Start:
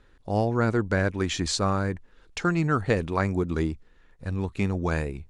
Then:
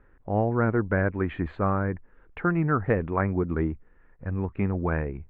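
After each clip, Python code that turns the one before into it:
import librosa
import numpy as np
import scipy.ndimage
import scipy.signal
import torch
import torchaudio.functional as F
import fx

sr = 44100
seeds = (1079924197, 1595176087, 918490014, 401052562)

y = scipy.signal.sosfilt(scipy.signal.cheby2(4, 50, 5100.0, 'lowpass', fs=sr, output='sos'), x)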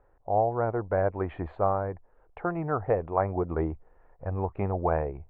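y = fx.curve_eq(x, sr, hz=(110.0, 230.0, 730.0, 1600.0), db=(0, -7, 13, -5))
y = fx.rider(y, sr, range_db=3, speed_s=0.5)
y = F.gain(torch.from_numpy(y), -4.5).numpy()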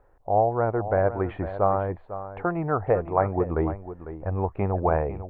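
y = x + 10.0 ** (-12.5 / 20.0) * np.pad(x, (int(500 * sr / 1000.0), 0))[:len(x)]
y = F.gain(torch.from_numpy(y), 3.5).numpy()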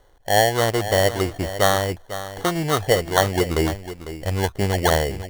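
y = fx.sample_hold(x, sr, seeds[0], rate_hz=2500.0, jitter_pct=0)
y = F.gain(torch.from_numpy(y), 4.0).numpy()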